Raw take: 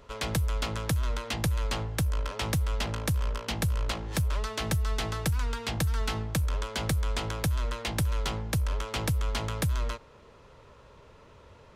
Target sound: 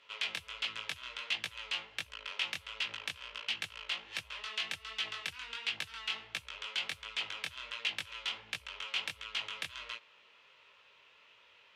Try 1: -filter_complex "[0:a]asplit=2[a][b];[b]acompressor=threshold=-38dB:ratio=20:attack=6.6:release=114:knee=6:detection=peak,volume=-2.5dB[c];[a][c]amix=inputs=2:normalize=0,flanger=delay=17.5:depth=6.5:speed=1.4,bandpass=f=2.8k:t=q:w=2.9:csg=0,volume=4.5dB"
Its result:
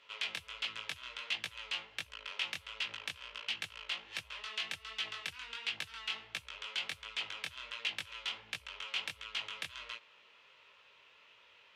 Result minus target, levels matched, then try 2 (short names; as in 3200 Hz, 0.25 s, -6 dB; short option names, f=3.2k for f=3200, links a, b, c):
compressor: peak gain reduction +8 dB
-filter_complex "[0:a]asplit=2[a][b];[b]acompressor=threshold=-29.5dB:ratio=20:attack=6.6:release=114:knee=6:detection=peak,volume=-2.5dB[c];[a][c]amix=inputs=2:normalize=0,flanger=delay=17.5:depth=6.5:speed=1.4,bandpass=f=2.8k:t=q:w=2.9:csg=0,volume=4.5dB"